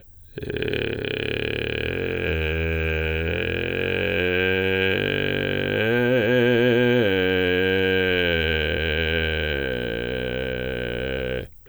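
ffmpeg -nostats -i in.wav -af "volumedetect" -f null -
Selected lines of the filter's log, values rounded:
mean_volume: -22.8 dB
max_volume: -9.0 dB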